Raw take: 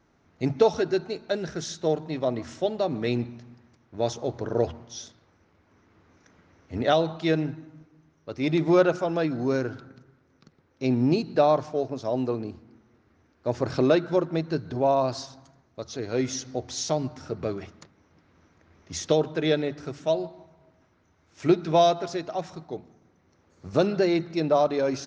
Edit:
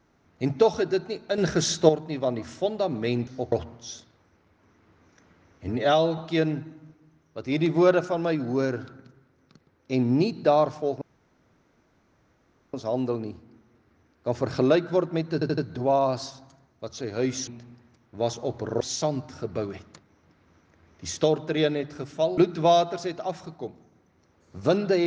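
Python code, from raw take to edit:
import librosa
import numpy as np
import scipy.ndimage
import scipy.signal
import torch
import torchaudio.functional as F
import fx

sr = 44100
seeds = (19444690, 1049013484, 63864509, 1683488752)

y = fx.edit(x, sr, fx.clip_gain(start_s=1.38, length_s=0.51, db=9.0),
    fx.swap(start_s=3.27, length_s=1.33, other_s=16.43, other_length_s=0.25),
    fx.stretch_span(start_s=6.76, length_s=0.33, factor=1.5),
    fx.insert_room_tone(at_s=11.93, length_s=1.72),
    fx.stutter(start_s=14.53, slice_s=0.08, count=4),
    fx.cut(start_s=20.25, length_s=1.22), tone=tone)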